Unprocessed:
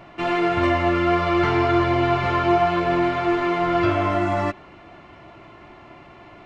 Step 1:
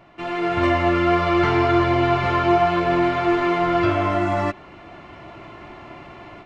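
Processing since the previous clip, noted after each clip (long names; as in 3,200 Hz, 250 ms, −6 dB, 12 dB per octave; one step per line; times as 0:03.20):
automatic gain control gain up to 11 dB
level −6 dB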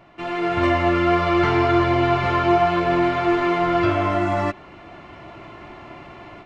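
no processing that can be heard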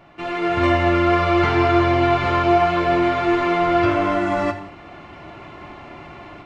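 reverb whose tail is shaped and stops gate 250 ms falling, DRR 7 dB
level +1 dB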